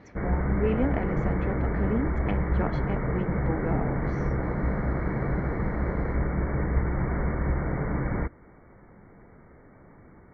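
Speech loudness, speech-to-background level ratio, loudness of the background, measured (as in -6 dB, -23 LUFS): -32.5 LUFS, -4.0 dB, -28.5 LUFS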